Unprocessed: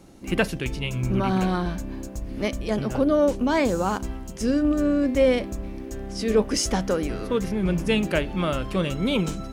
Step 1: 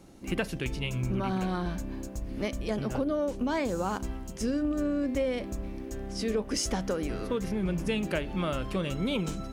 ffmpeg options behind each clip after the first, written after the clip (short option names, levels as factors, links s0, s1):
-af "acompressor=threshold=0.0794:ratio=6,volume=0.668"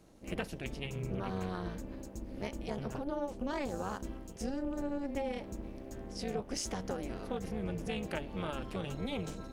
-af "tremolo=f=280:d=0.919,volume=0.668"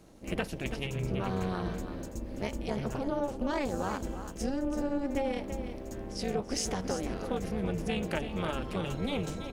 -af "aecho=1:1:332:0.316,volume=1.68"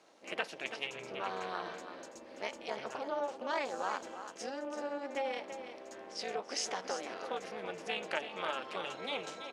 -af "highpass=650,lowpass=5700,volume=1.12"